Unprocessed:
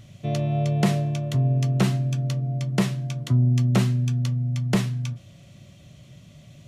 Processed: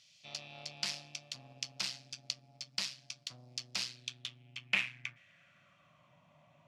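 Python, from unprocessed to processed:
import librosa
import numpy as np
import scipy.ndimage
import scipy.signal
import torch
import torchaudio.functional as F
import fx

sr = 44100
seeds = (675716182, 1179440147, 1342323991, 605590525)

y = fx.cheby_harmonics(x, sr, harmonics=(4,), levels_db=(-12,), full_scale_db=-10.0)
y = fx.filter_sweep_bandpass(y, sr, from_hz=4700.0, to_hz=940.0, start_s=3.86, end_s=6.19, q=4.0)
y = fx.graphic_eq_31(y, sr, hz=(160, 400, 2500, 4000), db=(4, -12, 5, -3))
y = y * 10.0 ** (4.5 / 20.0)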